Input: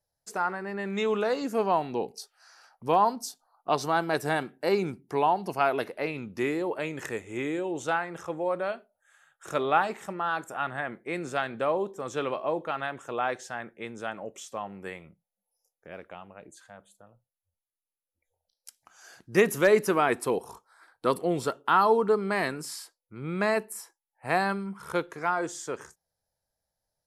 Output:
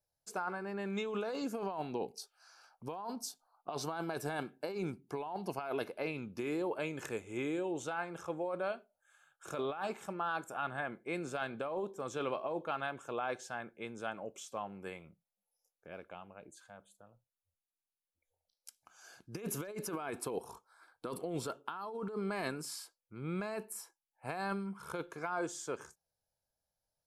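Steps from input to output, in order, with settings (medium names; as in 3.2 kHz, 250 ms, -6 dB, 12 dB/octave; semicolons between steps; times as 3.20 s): compressor with a negative ratio -29 dBFS, ratio -1; Butterworth band-stop 1.9 kHz, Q 6.9; trim -8 dB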